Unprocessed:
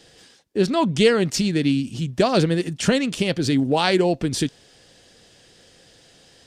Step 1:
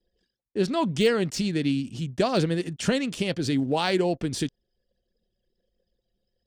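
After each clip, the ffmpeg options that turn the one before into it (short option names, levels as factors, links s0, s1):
-af "deesser=0.45,anlmdn=0.1,volume=0.562"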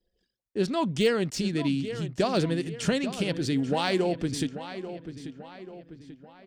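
-filter_complex "[0:a]asplit=2[s0][s1];[s1]adelay=838,lowpass=f=3600:p=1,volume=0.266,asplit=2[s2][s3];[s3]adelay=838,lowpass=f=3600:p=1,volume=0.48,asplit=2[s4][s5];[s5]adelay=838,lowpass=f=3600:p=1,volume=0.48,asplit=2[s6][s7];[s7]adelay=838,lowpass=f=3600:p=1,volume=0.48,asplit=2[s8][s9];[s9]adelay=838,lowpass=f=3600:p=1,volume=0.48[s10];[s0][s2][s4][s6][s8][s10]amix=inputs=6:normalize=0,volume=0.794"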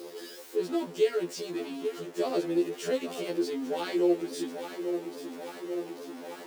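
-af "aeval=exprs='val(0)+0.5*0.0355*sgn(val(0))':c=same,highpass=f=380:t=q:w=4.5,afftfilt=real='re*2*eq(mod(b,4),0)':imag='im*2*eq(mod(b,4),0)':win_size=2048:overlap=0.75,volume=0.398"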